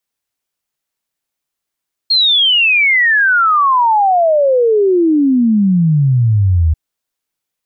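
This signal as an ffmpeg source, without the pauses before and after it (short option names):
-f lavfi -i "aevalsrc='0.398*clip(min(t,4.64-t)/0.01,0,1)*sin(2*PI*4300*4.64/log(76/4300)*(exp(log(76/4300)*t/4.64)-1))':d=4.64:s=44100"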